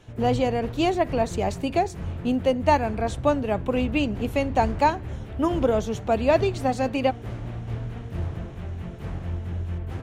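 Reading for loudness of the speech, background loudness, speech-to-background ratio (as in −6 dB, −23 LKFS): −24.5 LKFS, −34.0 LKFS, 9.5 dB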